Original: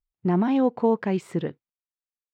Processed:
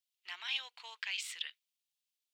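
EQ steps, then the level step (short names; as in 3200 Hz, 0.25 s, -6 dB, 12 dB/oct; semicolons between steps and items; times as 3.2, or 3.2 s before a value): ladder high-pass 2500 Hz, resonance 40%; +14.0 dB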